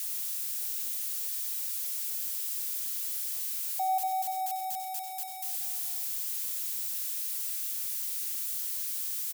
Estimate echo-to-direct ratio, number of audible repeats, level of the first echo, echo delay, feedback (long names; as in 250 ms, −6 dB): −8.0 dB, 2, −9.5 dB, 94 ms, repeats not evenly spaced